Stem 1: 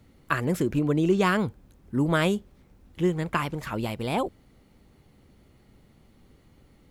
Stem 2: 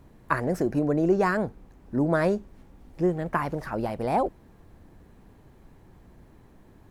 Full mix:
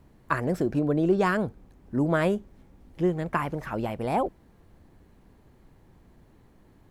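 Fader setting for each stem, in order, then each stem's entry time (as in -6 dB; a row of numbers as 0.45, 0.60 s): -9.5, -4.0 dB; 0.00, 0.00 s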